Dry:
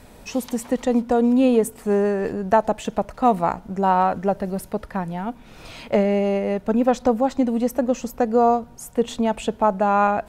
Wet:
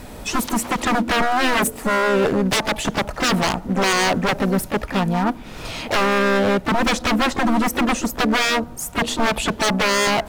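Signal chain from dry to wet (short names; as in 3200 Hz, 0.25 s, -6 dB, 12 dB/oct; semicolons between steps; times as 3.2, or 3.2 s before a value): wavefolder -22 dBFS; harmoniser +5 st -8 dB; gain +8.5 dB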